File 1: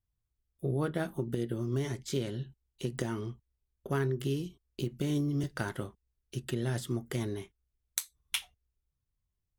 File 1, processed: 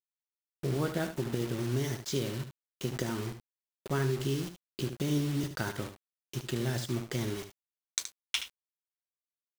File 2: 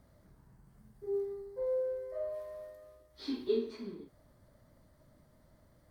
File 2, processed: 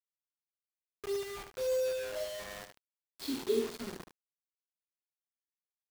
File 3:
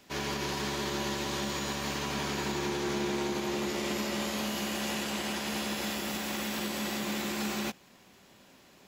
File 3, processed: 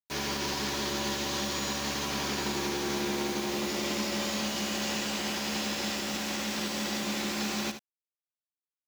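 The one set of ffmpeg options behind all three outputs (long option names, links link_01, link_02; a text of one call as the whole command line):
ffmpeg -i in.wav -af "lowpass=frequency=6000:width_type=q:width=1.7,acrusher=bits=6:mix=0:aa=0.000001,aecho=1:1:74:0.316" out.wav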